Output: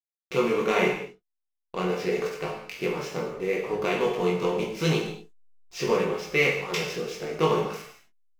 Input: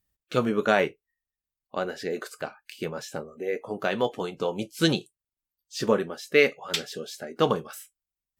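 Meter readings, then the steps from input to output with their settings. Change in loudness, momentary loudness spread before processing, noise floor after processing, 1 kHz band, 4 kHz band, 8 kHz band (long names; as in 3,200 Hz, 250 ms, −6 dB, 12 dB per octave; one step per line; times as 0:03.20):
+0.5 dB, 14 LU, −82 dBFS, +1.0 dB, −2.0 dB, −0.5 dB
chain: compressor on every frequency bin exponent 0.6
EQ curve with evenly spaced ripples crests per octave 0.79, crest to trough 9 dB
slack as between gear wheels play −30 dBFS
chorus effect 0.8 Hz, delay 19 ms, depth 3.8 ms
reverb whose tail is shaped and stops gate 260 ms falling, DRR −0.5 dB
level −4 dB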